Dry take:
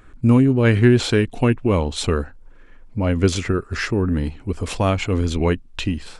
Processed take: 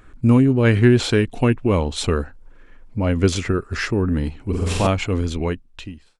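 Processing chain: ending faded out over 1.19 s; 4.42–4.87 flutter echo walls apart 7.8 m, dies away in 1.4 s

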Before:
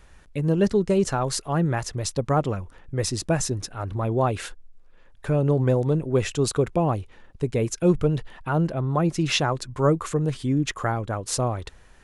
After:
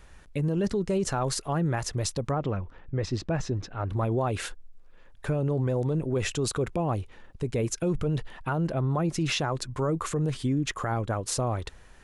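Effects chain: limiter -19 dBFS, peak gain reduction 10 dB; 2.31–3.9 air absorption 180 m

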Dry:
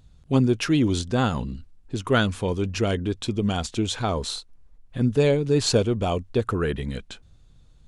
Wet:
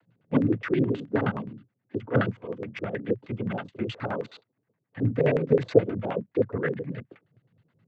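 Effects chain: 2.28–2.92 level quantiser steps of 10 dB; noise vocoder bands 16; LFO low-pass square 9.5 Hz 480–1900 Hz; tremolo 8.7 Hz, depth 50%; gain -2.5 dB

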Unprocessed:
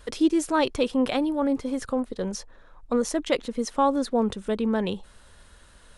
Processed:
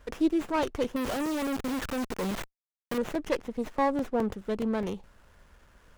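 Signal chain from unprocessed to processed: 0.96–2.98 companded quantiser 2-bit; crackling interface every 0.21 s, samples 128, zero, from 0.63; running maximum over 9 samples; gain -4 dB

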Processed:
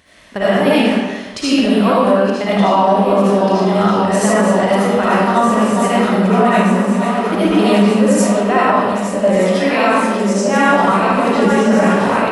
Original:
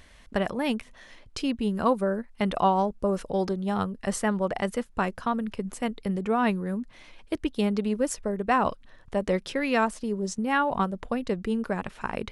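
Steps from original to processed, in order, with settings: regenerating reverse delay 0.611 s, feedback 82%, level -9.5 dB; HPF 110 Hz 12 dB/oct; reverb RT60 1.1 s, pre-delay 35 ms, DRR -10 dB; AGC; maximiser +3.5 dB; gain -2 dB

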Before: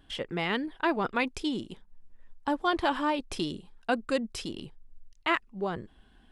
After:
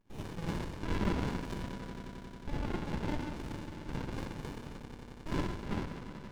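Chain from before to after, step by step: steep high-pass 710 Hz 36 dB/oct; treble ducked by the level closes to 1300 Hz, closed at -22.5 dBFS; 2.52–4.07 compressor, threshold -34 dBFS, peak gain reduction 10 dB; limiter -23 dBFS, peak gain reduction 7 dB; rippled Chebyshev low-pass 3800 Hz, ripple 6 dB; swelling echo 90 ms, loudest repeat 5, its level -16 dB; Schroeder reverb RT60 1.1 s, DRR -8.5 dB; running maximum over 65 samples

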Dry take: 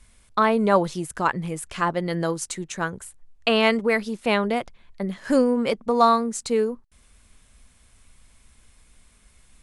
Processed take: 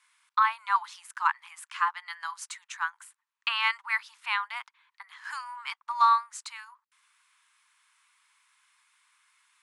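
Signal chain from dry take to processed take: steep high-pass 920 Hz 72 dB/oct; high shelf 4000 Hz -12 dB

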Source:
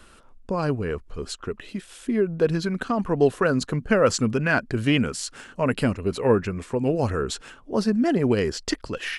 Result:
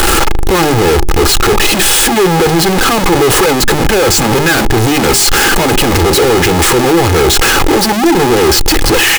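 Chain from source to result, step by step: infinite clipping; notches 50/100/150/200/250/300/350/400 Hz; comb 2.4 ms, depth 43%; small resonant body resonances 340/820 Hz, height 9 dB, ringing for 55 ms; sample leveller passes 2; gain +8.5 dB

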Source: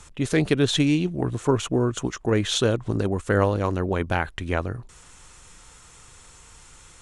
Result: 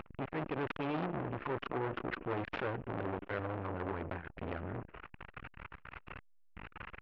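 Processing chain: CVSD 32 kbps; elliptic low-pass 2700 Hz, stop band 40 dB; bell 1500 Hz +4.5 dB 1.3 oct; upward compressor, threshold -34 dBFS; limiter -25.5 dBFS, peak gain reduction 17 dB; delay with a stepping band-pass 0.124 s, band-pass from 280 Hz, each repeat 0.7 oct, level -8.5 dB; stuck buffer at 6.18, samples 1024, times 15; core saturation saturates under 1000 Hz; gain +1.5 dB

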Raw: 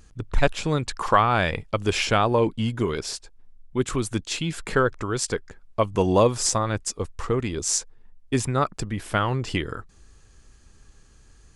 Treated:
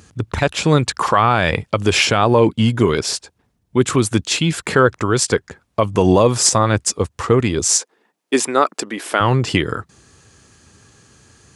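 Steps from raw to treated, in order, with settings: HPF 77 Hz 24 dB/oct, from 7.78 s 280 Hz, from 9.2 s 88 Hz; maximiser +11 dB; gain -1 dB

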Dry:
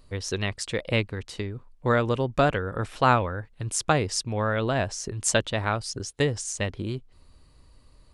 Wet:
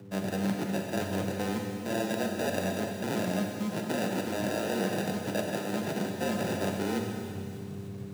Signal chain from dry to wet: reverse; compressor 12:1, threshold -37 dBFS, peak gain reduction 23 dB; reverse; sample-and-hold 42×; buzz 100 Hz, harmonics 4, -58 dBFS; on a send: thin delay 0.296 s, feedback 71%, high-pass 4200 Hz, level -14.5 dB; on the sum: Schroeder reverb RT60 2.4 s, combs from 30 ms, DRR 1.5 dB; frequency shift +95 Hz; gain +7.5 dB

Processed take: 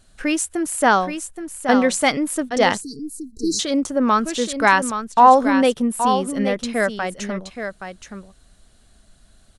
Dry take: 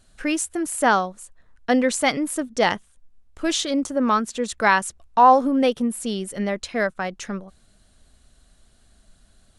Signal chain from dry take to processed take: echo 0.823 s -8.5 dB; spectral delete 2.82–3.59, 470–3900 Hz; gain +2.5 dB

